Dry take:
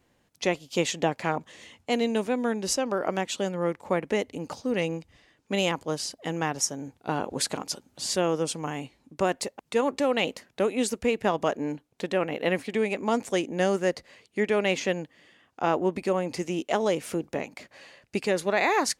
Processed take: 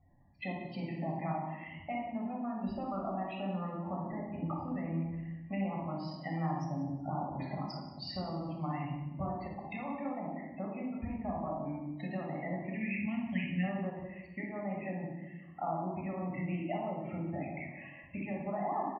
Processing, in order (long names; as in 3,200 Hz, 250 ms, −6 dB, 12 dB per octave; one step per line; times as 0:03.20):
gain on a spectral selection 0:12.77–0:13.64, 270–1,600 Hz −17 dB
treble cut that deepens with the level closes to 970 Hz, closed at −21 dBFS
low-pass filter 3,000 Hz 12 dB per octave
hum removal 57.03 Hz, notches 26
downward compressor 6 to 1, threshold −34 dBFS, peak gain reduction 13.5 dB
spectral peaks only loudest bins 32
phaser with its sweep stopped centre 2,300 Hz, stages 8
on a send: repeating echo 182 ms, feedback 27%, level −15.5 dB
on the sum: rectangular room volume 3,500 cubic metres, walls furnished, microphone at 6.5 metres